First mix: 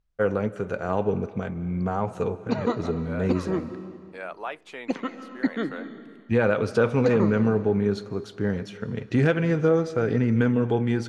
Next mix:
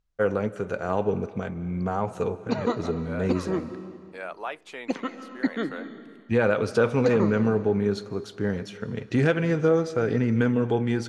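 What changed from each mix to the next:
master: add tone controls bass -2 dB, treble +3 dB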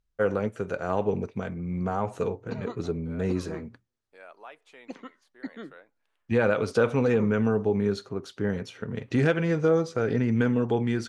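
second voice -12.0 dB; background -9.0 dB; reverb: off

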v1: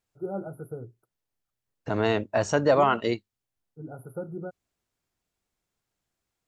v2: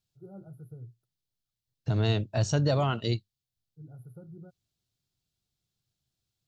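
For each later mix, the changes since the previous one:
first voice -10.0 dB; master: add ten-band graphic EQ 125 Hz +11 dB, 250 Hz -5 dB, 500 Hz -6 dB, 1 kHz -9 dB, 2 kHz -9 dB, 4 kHz +7 dB, 8 kHz -3 dB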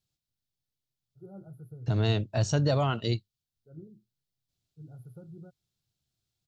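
first voice: entry +1.00 s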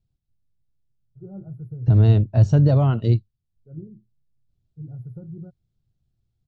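master: add tilt EQ -4 dB/octave

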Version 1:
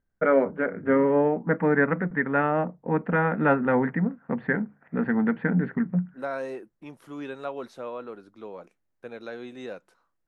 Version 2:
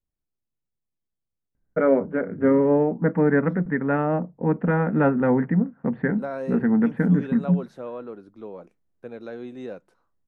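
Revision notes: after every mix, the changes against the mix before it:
first voice: entry +1.55 s; master: add tilt shelf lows +5.5 dB, about 690 Hz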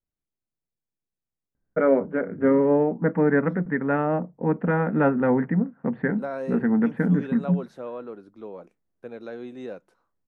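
master: add bass shelf 130 Hz -6 dB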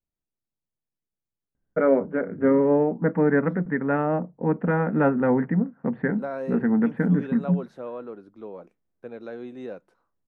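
master: add treble shelf 4 kHz -6 dB

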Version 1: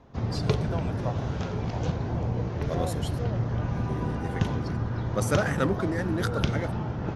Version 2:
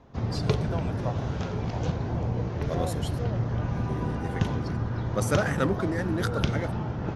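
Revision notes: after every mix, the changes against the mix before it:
no change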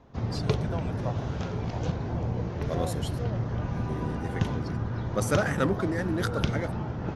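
reverb: off

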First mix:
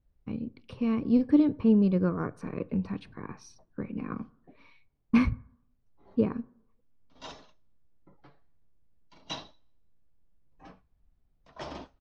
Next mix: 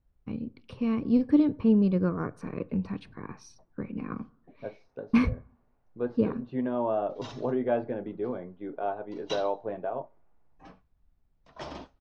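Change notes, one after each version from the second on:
second voice: unmuted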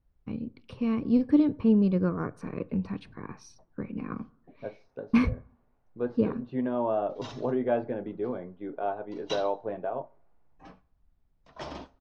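second voice: send +6.0 dB; background: send +10.0 dB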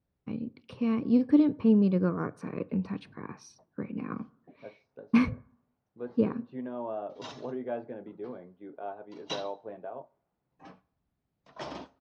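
second voice -8.0 dB; master: add high-pass 120 Hz 12 dB/octave

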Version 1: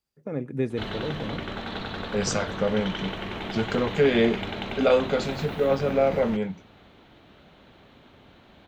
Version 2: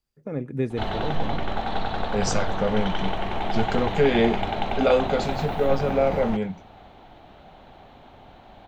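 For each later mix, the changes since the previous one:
background: add peaking EQ 770 Hz +13 dB 0.68 oct; master: remove high-pass 110 Hz 6 dB/octave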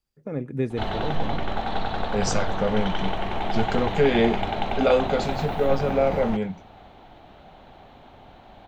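no change

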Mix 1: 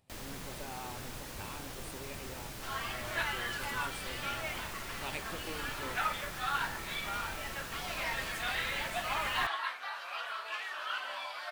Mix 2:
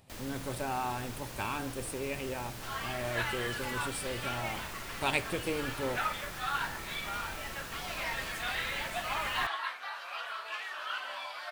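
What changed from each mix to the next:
speech +11.0 dB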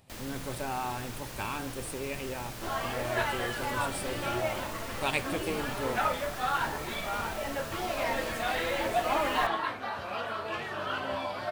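second sound: remove high-pass 1.3 kHz 12 dB/octave; reverb: on, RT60 0.80 s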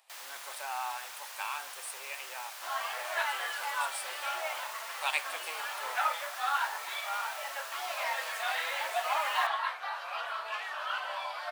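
master: add high-pass 770 Hz 24 dB/octave

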